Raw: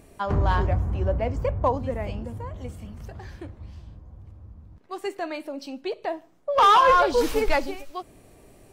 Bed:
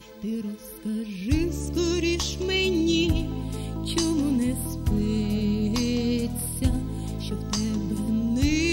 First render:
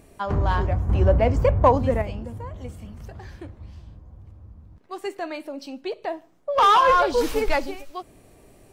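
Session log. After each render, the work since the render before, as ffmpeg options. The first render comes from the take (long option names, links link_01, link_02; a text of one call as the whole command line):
ffmpeg -i in.wav -filter_complex "[0:a]asettb=1/sr,asplit=3[link_01][link_02][link_03];[link_01]atrim=end=0.894[link_04];[link_02]atrim=start=0.89:end=2.02,asetpts=PTS-STARTPTS,afade=type=in:duration=0.004:curve=qsin,afade=type=out:start_time=1.126:duration=0.004:curve=qsin,acontrast=84[link_05];[link_03]atrim=start=2.016[link_06];[link_04][link_05]acrossfade=duration=0.004:curve1=hsin:curve2=qsin[link_07];[link_07][link_06]acrossfade=duration=0.004:curve1=qsin:curve2=hsin" out.wav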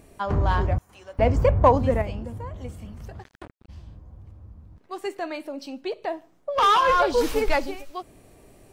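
ffmpeg -i in.wav -filter_complex "[0:a]asettb=1/sr,asplit=3[link_01][link_02][link_03];[link_01]atrim=end=0.784[link_04];[link_02]atrim=start=0.78:end=1.19,asetpts=PTS-STARTPTS,afade=type=in:duration=0.004:curve=qsin,afade=type=out:start_time=0.406:duration=0.004:curve=qsin,aderivative[link_05];[link_03]atrim=start=1.186[link_06];[link_04][link_05]acrossfade=duration=0.004:curve1=hsin:curve2=qsin[link_07];[link_07][link_06]acrossfade=duration=0.004:curve1=qsin:curve2=hsin,asplit=3[link_08][link_09][link_10];[link_08]afade=type=out:start_time=3.22:duration=0.02[link_11];[link_09]acrusher=bits=4:mix=0:aa=0.5,afade=type=in:start_time=3.22:duration=0.02,afade=type=out:start_time=3.68:duration=0.02[link_12];[link_10]afade=type=in:start_time=3.68:duration=0.02[link_13];[link_11][link_12][link_13]amix=inputs=3:normalize=0,asettb=1/sr,asplit=3[link_14][link_15][link_16];[link_14]atrim=end=6.494[link_17];[link_15]atrim=start=6.49:end=7,asetpts=PTS-STARTPTS,afade=type=in:duration=0.004:curve=qsin,afade=type=out:start_time=0.506:duration=0.004:curve=qsin,equalizer=frequency=740:width=1.2:gain=-5[link_18];[link_16]atrim=start=6.996[link_19];[link_17][link_18]acrossfade=duration=0.004:curve1=hsin:curve2=qsin[link_20];[link_20][link_19]acrossfade=duration=0.004:curve1=qsin:curve2=hsin" out.wav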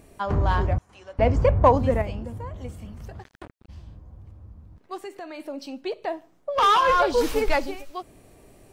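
ffmpeg -i in.wav -filter_complex "[0:a]asettb=1/sr,asplit=3[link_01][link_02][link_03];[link_01]atrim=end=0.734[link_04];[link_02]atrim=start=0.73:end=1.65,asetpts=PTS-STARTPTS,afade=type=in:duration=0.004:curve=qsin,afade=type=out:start_time=0.916:duration=0.004:curve=qsin,lowpass=7200[link_05];[link_03]atrim=start=1.646[link_06];[link_04][link_05]acrossfade=duration=0.004:curve1=hsin:curve2=qsin[link_07];[link_07][link_06]acrossfade=duration=0.004:curve1=qsin:curve2=hsin,asplit=3[link_08][link_09][link_10];[link_08]afade=type=out:start_time=4.97:duration=0.02[link_11];[link_09]acompressor=threshold=-36dB:ratio=2.5:attack=3.2:release=140:knee=1:detection=peak,afade=type=in:start_time=4.97:duration=0.02,afade=type=out:start_time=5.38:duration=0.02[link_12];[link_10]afade=type=in:start_time=5.38:duration=0.02[link_13];[link_11][link_12][link_13]amix=inputs=3:normalize=0" out.wav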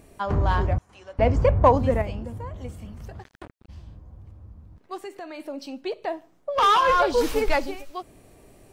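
ffmpeg -i in.wav -af anull out.wav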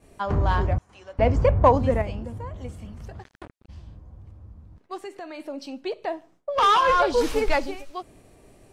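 ffmpeg -i in.wav -af "agate=range=-33dB:threshold=-50dB:ratio=3:detection=peak,lowpass=11000" out.wav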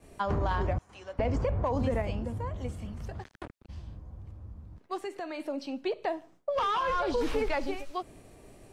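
ffmpeg -i in.wav -filter_complex "[0:a]alimiter=limit=-17.5dB:level=0:latency=1:release=35,acrossover=split=230|3900[link_01][link_02][link_03];[link_01]acompressor=threshold=-29dB:ratio=4[link_04];[link_02]acompressor=threshold=-27dB:ratio=4[link_05];[link_03]acompressor=threshold=-54dB:ratio=4[link_06];[link_04][link_05][link_06]amix=inputs=3:normalize=0" out.wav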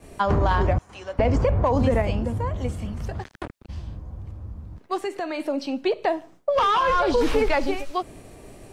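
ffmpeg -i in.wav -af "volume=8.5dB" out.wav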